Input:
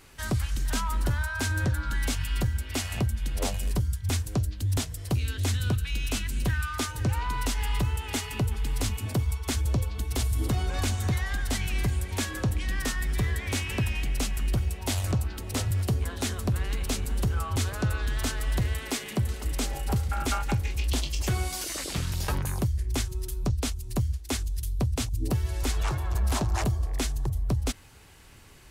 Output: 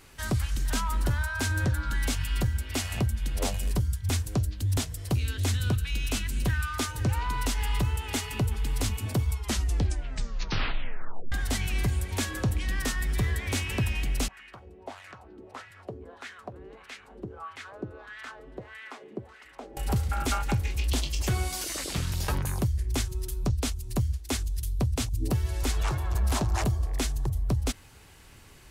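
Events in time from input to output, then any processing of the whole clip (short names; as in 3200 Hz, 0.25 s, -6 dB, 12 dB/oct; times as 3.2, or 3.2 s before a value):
9.32 tape stop 2.00 s
14.28–19.77 LFO band-pass sine 1.6 Hz 330–2000 Hz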